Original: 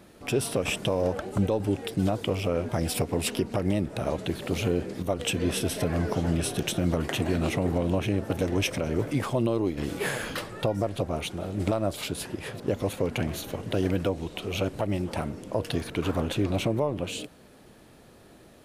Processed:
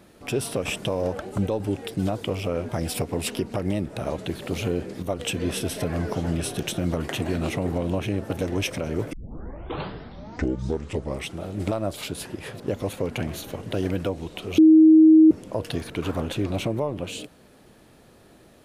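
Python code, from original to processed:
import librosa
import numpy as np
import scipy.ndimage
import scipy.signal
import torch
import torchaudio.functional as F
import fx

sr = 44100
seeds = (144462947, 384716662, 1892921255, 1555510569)

y = fx.edit(x, sr, fx.tape_start(start_s=9.13, length_s=2.31),
    fx.bleep(start_s=14.58, length_s=0.73, hz=316.0, db=-9.0), tone=tone)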